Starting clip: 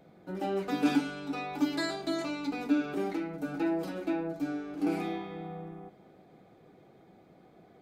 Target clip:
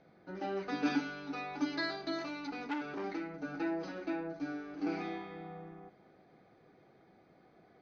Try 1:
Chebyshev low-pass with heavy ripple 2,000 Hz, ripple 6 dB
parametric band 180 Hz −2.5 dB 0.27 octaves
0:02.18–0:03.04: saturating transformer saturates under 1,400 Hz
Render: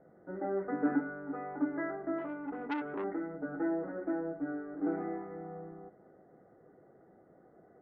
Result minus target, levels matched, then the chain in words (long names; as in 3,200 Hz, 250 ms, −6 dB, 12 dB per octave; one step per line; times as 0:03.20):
2,000 Hz band −4.5 dB
Chebyshev low-pass with heavy ripple 6,300 Hz, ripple 6 dB
parametric band 180 Hz −2.5 dB 0.27 octaves
0:02.18–0:03.04: saturating transformer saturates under 1,400 Hz